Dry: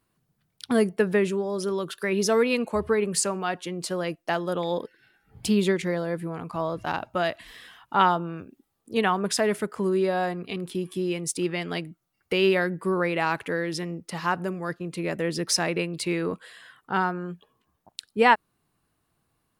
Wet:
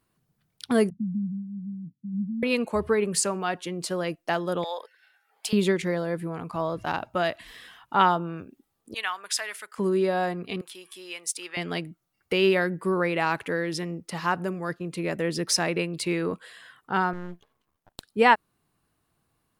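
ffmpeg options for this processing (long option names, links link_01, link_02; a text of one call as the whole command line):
ffmpeg -i in.wav -filter_complex "[0:a]asettb=1/sr,asplit=3[link_01][link_02][link_03];[link_01]atrim=end=0.904[link_04];[link_02]atrim=start=0.9:end=2.43,asetpts=PTS-STARTPTS,afade=type=in:duration=0.004:curve=qsin,afade=type=out:start_time=1.526:duration=0.004:curve=qsin,asuperpass=centerf=170:order=20:qfactor=0.95[link_05];[link_03]atrim=start=2.426[link_06];[link_04][link_05]acrossfade=duration=0.004:curve1=hsin:curve2=qsin[link_07];[link_07][link_06]acrossfade=duration=0.004:curve1=qsin:curve2=hsin,asettb=1/sr,asplit=3[link_08][link_09][link_10];[link_08]atrim=end=4.644[link_11];[link_09]atrim=start=4.64:end=5.53,asetpts=PTS-STARTPTS,afade=type=in:duration=0.004:curve=qsin,afade=type=out:start_time=0.886:duration=0.004:curve=qsin,highpass=frequency=620:width=0.5412,highpass=frequency=620:width=1.3066[link_12];[link_10]atrim=start=5.526[link_13];[link_11][link_12]acrossfade=duration=0.004:curve1=hsin:curve2=qsin[link_14];[link_14][link_13]acrossfade=duration=0.004:curve1=qsin:curve2=hsin,asettb=1/sr,asplit=3[link_15][link_16][link_17];[link_15]atrim=end=8.944[link_18];[link_16]atrim=start=8.94:end=9.78,asetpts=PTS-STARTPTS,afade=type=in:duration=0.004:curve=qsin,afade=type=out:start_time=0.836:duration=0.004:curve=qsin,highpass=1500[link_19];[link_17]atrim=start=9.776[link_20];[link_18][link_19]acrossfade=duration=0.004:curve1=hsin:curve2=qsin[link_21];[link_21][link_20]acrossfade=duration=0.004:curve1=qsin:curve2=hsin,asettb=1/sr,asplit=3[link_22][link_23][link_24];[link_22]atrim=end=10.614[link_25];[link_23]atrim=start=10.61:end=11.57,asetpts=PTS-STARTPTS,afade=type=in:duration=0.004:curve=qsin,afade=type=out:start_time=0.956:duration=0.004:curve=qsin,highpass=980[link_26];[link_24]atrim=start=11.566[link_27];[link_25][link_26]acrossfade=duration=0.004:curve1=hsin:curve2=qsin[link_28];[link_28][link_27]acrossfade=duration=0.004:curve1=qsin:curve2=hsin,asettb=1/sr,asplit=3[link_29][link_30][link_31];[link_29]atrim=end=17.134[link_32];[link_30]atrim=start=17.13:end=18.03,asetpts=PTS-STARTPTS,afade=type=in:duration=0.004:curve=qsin,afade=type=out:start_time=0.896:duration=0.004:curve=qsin,aeval=exprs='max(val(0),0)':channel_layout=same[link_33];[link_31]atrim=start=18.026[link_34];[link_32][link_33]acrossfade=duration=0.004:curve1=hsin:curve2=qsin[link_35];[link_35][link_34]acrossfade=duration=0.004:curve1=qsin:curve2=hsin" out.wav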